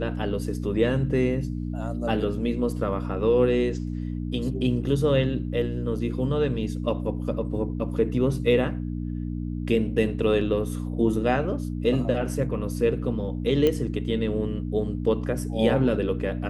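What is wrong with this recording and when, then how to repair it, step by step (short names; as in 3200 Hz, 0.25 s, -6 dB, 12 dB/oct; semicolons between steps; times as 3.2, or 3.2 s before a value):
hum 60 Hz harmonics 5 -30 dBFS
13.67 pop -11 dBFS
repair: de-click; de-hum 60 Hz, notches 5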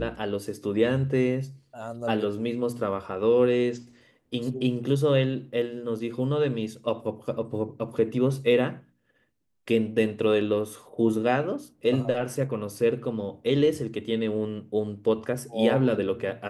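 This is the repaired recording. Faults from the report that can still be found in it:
13.67 pop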